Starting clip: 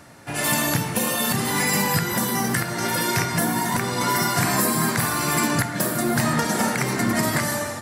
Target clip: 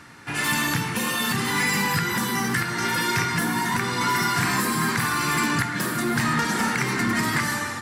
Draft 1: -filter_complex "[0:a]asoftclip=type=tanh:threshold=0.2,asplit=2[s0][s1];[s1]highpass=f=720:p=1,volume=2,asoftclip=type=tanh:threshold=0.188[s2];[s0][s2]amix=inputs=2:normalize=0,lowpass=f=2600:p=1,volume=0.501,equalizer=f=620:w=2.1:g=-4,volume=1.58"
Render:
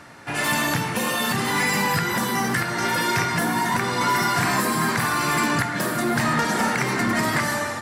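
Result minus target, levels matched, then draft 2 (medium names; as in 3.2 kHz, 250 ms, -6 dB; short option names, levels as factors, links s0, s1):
500 Hz band +4.0 dB
-filter_complex "[0:a]asoftclip=type=tanh:threshold=0.2,asplit=2[s0][s1];[s1]highpass=f=720:p=1,volume=2,asoftclip=type=tanh:threshold=0.188[s2];[s0][s2]amix=inputs=2:normalize=0,lowpass=f=2600:p=1,volume=0.501,equalizer=f=620:w=2.1:g=-15,volume=1.58"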